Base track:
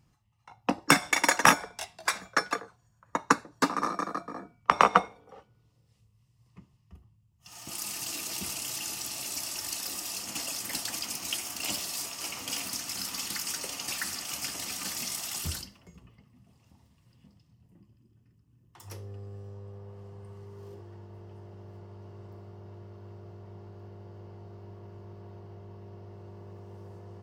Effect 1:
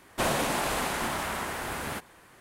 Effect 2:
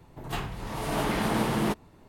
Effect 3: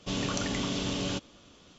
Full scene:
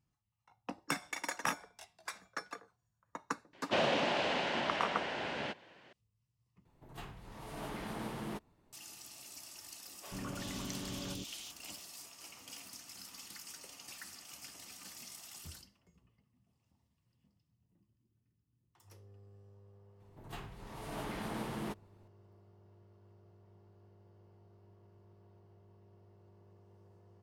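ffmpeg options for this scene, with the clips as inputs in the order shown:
-filter_complex "[2:a]asplit=2[a][b];[0:a]volume=-15.5dB[c];[1:a]highpass=150,equalizer=f=580:t=q:w=4:g=5,equalizer=f=1.2k:t=q:w=4:g=-8,equalizer=f=2.9k:t=q:w=4:g=6,lowpass=f=5k:w=0.5412,lowpass=f=5k:w=1.3066[d];[3:a]acrossover=split=500|2500[e][f][g];[e]adelay=90[h];[g]adelay=370[i];[h][f][i]amix=inputs=3:normalize=0[j];[c]asplit=2[k][l];[k]atrim=end=6.654[m];[a]atrim=end=2.08,asetpts=PTS-STARTPTS,volume=-15dB[n];[l]atrim=start=8.726[o];[d]atrim=end=2.4,asetpts=PTS-STARTPTS,volume=-4dB,afade=t=in:d=0.004:c=hsin,afade=t=out:st=2.396:d=0.004:c=hsin,adelay=155673S[p];[j]atrim=end=1.78,asetpts=PTS-STARTPTS,volume=-9.5dB,afade=t=in:d=0.004:c=hsin,afade=t=out:st=1.776:d=0.004:c=hsin,adelay=9960[q];[b]atrim=end=2.08,asetpts=PTS-STARTPTS,volume=-13.5dB,afade=t=in:d=0.004:c=hsin,afade=t=out:st=2.076:d=0.004:c=hsin,adelay=20000[r];[m][n]acrossfade=d=0.004:c1=hsin:c2=hsin[s];[s][o]acrossfade=d=0.004:c1=hsin:c2=hsin[t];[t][p][q][r]amix=inputs=4:normalize=0"

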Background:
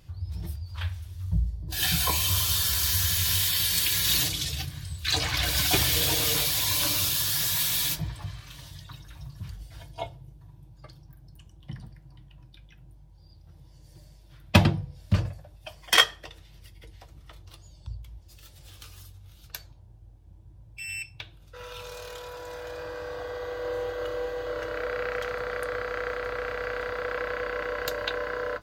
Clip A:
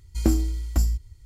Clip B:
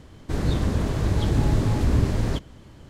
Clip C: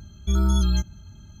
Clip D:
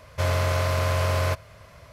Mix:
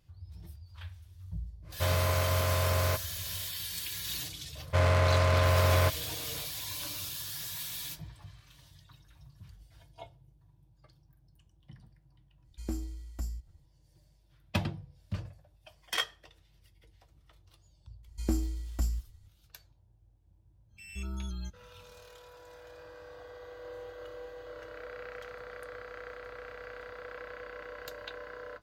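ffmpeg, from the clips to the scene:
-filter_complex "[4:a]asplit=2[a][b];[1:a]asplit=2[c][d];[0:a]volume=-13dB[e];[b]adynamicsmooth=sensitivity=6.5:basefreq=1.2k[f];[a]atrim=end=1.92,asetpts=PTS-STARTPTS,volume=-5dB,afade=t=in:d=0.1,afade=t=out:st=1.82:d=0.1,adelay=1620[g];[f]atrim=end=1.92,asetpts=PTS-STARTPTS,volume=-1dB,afade=t=in:d=0.004:c=hsin,afade=t=out:st=1.916:d=0.004:c=hsin,adelay=4550[h];[c]atrim=end=1.25,asetpts=PTS-STARTPTS,volume=-15dB,afade=t=in:d=0.05,afade=t=out:st=1.2:d=0.05,adelay=12430[i];[d]atrim=end=1.25,asetpts=PTS-STARTPTS,volume=-9dB,afade=t=in:d=0.004:c=hsin,afade=t=out:st=1.246:d=0.004:c=hsin,adelay=18030[j];[3:a]atrim=end=1.4,asetpts=PTS-STARTPTS,volume=-17.5dB,afade=t=in:d=0.1,afade=t=out:st=1.3:d=0.1,adelay=911988S[k];[e][g][h][i][j][k]amix=inputs=6:normalize=0"

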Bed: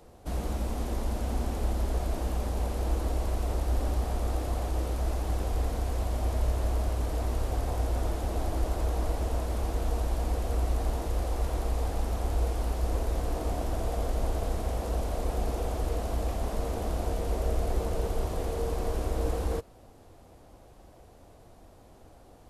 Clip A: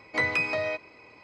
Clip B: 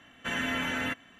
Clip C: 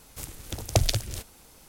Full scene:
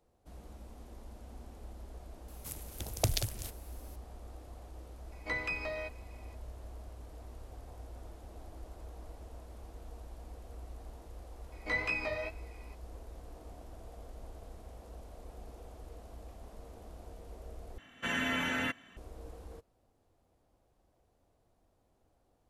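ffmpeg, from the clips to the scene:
-filter_complex "[1:a]asplit=2[a][b];[0:a]volume=-19dB[c];[3:a]equalizer=f=12k:w=1.7:g=8[d];[b]flanger=delay=15.5:depth=5.1:speed=2.2[e];[c]asplit=2[f][g];[f]atrim=end=17.784[h];[2:a]atrim=end=1.19,asetpts=PTS-STARTPTS,volume=-2dB[i];[g]atrim=start=18.966[j];[d]atrim=end=1.68,asetpts=PTS-STARTPTS,volume=-8dB,afade=t=in:d=0.004:c=hsin,afade=t=out:st=1.676:d=0.004:c=hsin,adelay=2280[k];[a]atrim=end=1.23,asetpts=PTS-STARTPTS,volume=-10dB,afade=t=in:d=0.004:c=hsin,afade=t=out:st=1.226:d=0.004:c=hsin,adelay=5120[l];[e]atrim=end=1.23,asetpts=PTS-STARTPTS,volume=-5dB,afade=t=in:d=0.004:c=hsin,afade=t=out:st=1.226:d=0.004:c=hsin,adelay=11520[m];[h][i]acrossfade=d=0.004:c1=hsin:c2=hsin[n];[n][j]acrossfade=d=0.004:c1=hsin:c2=hsin[o];[o][k][l][m]amix=inputs=4:normalize=0"

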